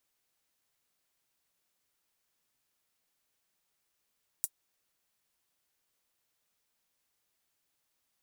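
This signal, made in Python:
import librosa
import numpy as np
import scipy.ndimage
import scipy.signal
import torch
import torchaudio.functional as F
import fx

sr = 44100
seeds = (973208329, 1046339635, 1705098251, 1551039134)

y = fx.drum_hat(sr, length_s=0.24, from_hz=8300.0, decay_s=0.06)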